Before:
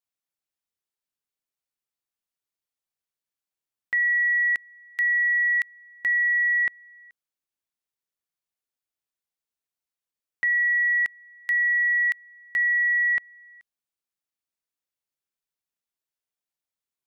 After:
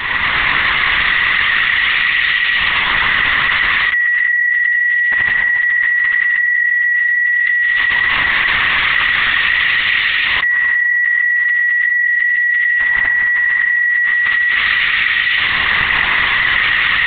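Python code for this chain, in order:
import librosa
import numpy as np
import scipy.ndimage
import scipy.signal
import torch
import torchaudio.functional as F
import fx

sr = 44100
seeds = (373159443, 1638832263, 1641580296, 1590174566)

y = fx.bin_compress(x, sr, power=0.4)
y = fx.peak_eq(y, sr, hz=1800.0, db=-6.5, octaves=0.7)
y = fx.filter_lfo_highpass(y, sr, shape='saw_up', hz=0.39, low_hz=990.0, high_hz=2500.0, q=1.2)
y = fx.air_absorb(y, sr, metres=66.0)
y = fx.echo_multitap(y, sr, ms=(87, 91, 220, 307, 318, 603), db=(-5.0, -6.5, -7.0, -11.5, -9.0, -8.5))
y = fx.rev_gated(y, sr, seeds[0], gate_ms=390, shape='flat', drr_db=-3.5)
y = fx.lpc_vocoder(y, sr, seeds[1], excitation='whisper', order=10)
y = fx.env_flatten(y, sr, amount_pct=100)
y = y * 10.0 ** (2.0 / 20.0)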